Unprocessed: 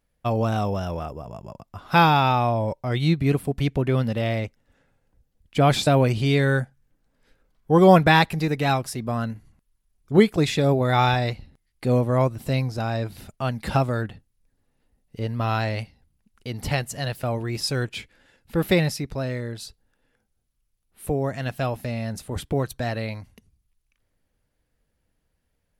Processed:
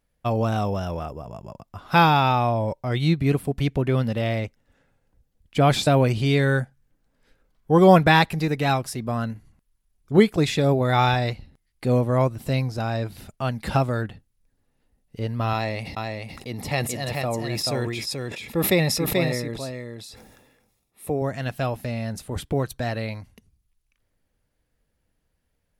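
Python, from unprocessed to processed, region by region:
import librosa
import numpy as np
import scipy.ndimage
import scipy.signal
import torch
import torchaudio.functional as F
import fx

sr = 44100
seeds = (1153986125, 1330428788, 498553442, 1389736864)

y = fx.chain(x, sr, fx.notch_comb(f0_hz=1500.0),
    fx.echo_single(ms=434, db=-4.0),
    fx.sustainer(db_per_s=42.0), at=(15.53, 21.22))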